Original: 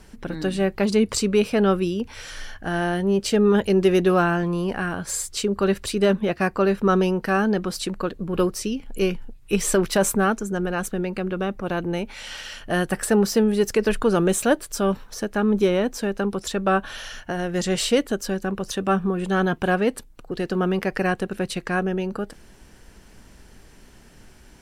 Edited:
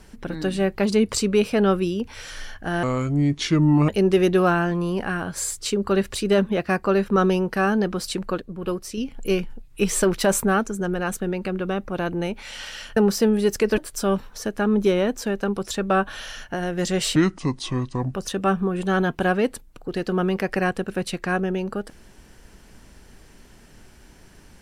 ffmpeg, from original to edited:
-filter_complex "[0:a]asplit=9[a][b][c][d][e][f][g][h][i];[a]atrim=end=2.834[j];[b]atrim=start=2.83:end=3.6,asetpts=PTS-STARTPTS,asetrate=32193,aresample=44100,atrim=end_sample=46516,asetpts=PTS-STARTPTS[k];[c]atrim=start=3.596:end=8.132[l];[d]atrim=start=8.128:end=8.692,asetpts=PTS-STARTPTS,volume=-5.5dB[m];[e]atrim=start=8.688:end=12.682[n];[f]atrim=start=13.108:end=13.922[o];[g]atrim=start=14.538:end=17.924[p];[h]atrim=start=17.92:end=18.57,asetpts=PTS-STARTPTS,asetrate=29106,aresample=44100[q];[i]atrim=start=18.566[r];[j][k]acrossfade=d=0.004:c1=hsin:c2=hsin[s];[s][l]acrossfade=d=0.004:c1=hsin:c2=hsin[t];[t][m]acrossfade=d=0.004:c1=hsin:c2=hsin[u];[u][n]acrossfade=d=0.004:c1=hsin:c2=hsin[v];[v][o]acrossfade=d=0.004:c1=hsin:c2=hsin[w];[w][p]acrossfade=d=0.004:c1=hsin:c2=hsin[x];[x][q]acrossfade=d=0.004:c1=hsin:c2=hsin[y];[y][r]acrossfade=d=0.004:c1=hsin:c2=hsin"

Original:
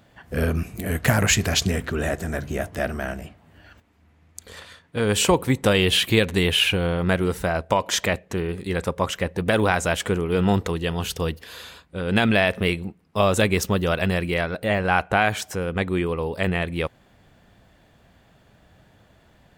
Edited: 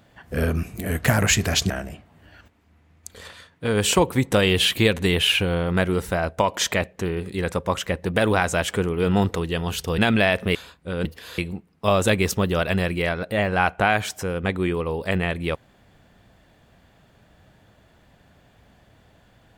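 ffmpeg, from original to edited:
-filter_complex "[0:a]asplit=6[a][b][c][d][e][f];[a]atrim=end=1.702[g];[b]atrim=start=3.018:end=11.302[h];[c]atrim=start=12.128:end=12.702[i];[d]atrim=start=11.628:end=12.132[j];[e]atrim=start=11.298:end=11.632[k];[f]atrim=start=12.698[l];[g][h]acrossfade=d=0.004:c1=hsin:c2=hsin[m];[m][i]acrossfade=d=0.004:c1=hsin:c2=hsin[n];[n][j]acrossfade=d=0.004:c1=hsin:c2=hsin[o];[o][k]acrossfade=d=0.004:c1=hsin:c2=hsin[p];[p][l]acrossfade=d=0.004:c1=hsin:c2=hsin"

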